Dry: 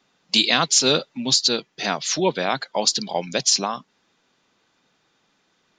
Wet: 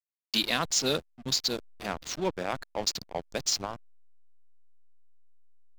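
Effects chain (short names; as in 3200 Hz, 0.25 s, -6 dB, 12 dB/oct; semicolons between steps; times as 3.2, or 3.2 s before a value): backlash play -18.5 dBFS; gain -8 dB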